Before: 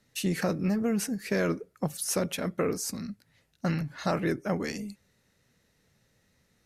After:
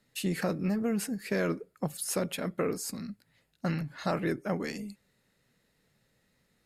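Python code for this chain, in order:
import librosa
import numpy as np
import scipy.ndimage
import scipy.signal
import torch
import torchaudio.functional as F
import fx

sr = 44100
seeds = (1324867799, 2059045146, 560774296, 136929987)

y = fx.peak_eq(x, sr, hz=82.0, db=-11.5, octaves=0.43)
y = fx.notch(y, sr, hz=5900.0, q=5.8)
y = y * librosa.db_to_amplitude(-2.0)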